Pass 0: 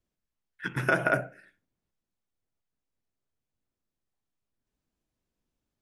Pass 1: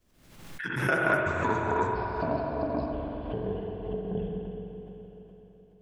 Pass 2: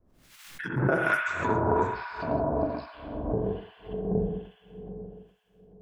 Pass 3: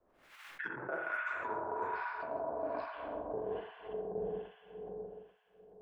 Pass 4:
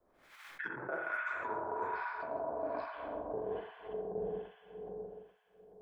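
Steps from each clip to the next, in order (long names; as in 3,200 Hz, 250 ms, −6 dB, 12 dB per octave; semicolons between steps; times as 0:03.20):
delay with pitch and tempo change per echo 117 ms, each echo −7 semitones, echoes 3; spring reverb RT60 3.8 s, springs 42/60 ms, chirp 50 ms, DRR −0.5 dB; background raised ahead of every attack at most 59 dB per second; level −2.5 dB
two-band tremolo in antiphase 1.2 Hz, depth 100%, crossover 1,200 Hz; level +5.5 dB
three-way crossover with the lows and the highs turned down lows −20 dB, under 400 Hz, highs −17 dB, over 2,600 Hz; reversed playback; downward compressor 8 to 1, threshold −38 dBFS, peak gain reduction 16.5 dB; reversed playback; level +3 dB
notch filter 2,800 Hz, Q 12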